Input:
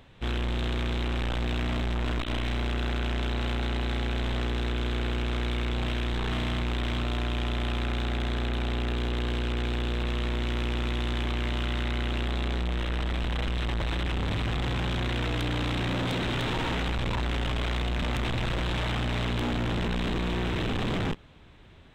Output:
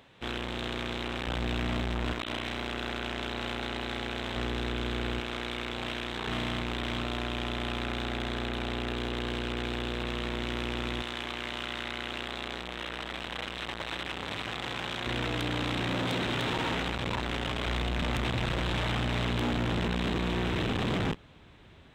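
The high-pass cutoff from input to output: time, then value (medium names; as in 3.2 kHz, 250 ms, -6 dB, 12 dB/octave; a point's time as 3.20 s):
high-pass 6 dB/octave
270 Hz
from 1.27 s 84 Hz
from 2.13 s 310 Hz
from 4.36 s 120 Hz
from 5.20 s 380 Hz
from 6.27 s 170 Hz
from 11.02 s 610 Hz
from 15.06 s 160 Hz
from 17.66 s 63 Hz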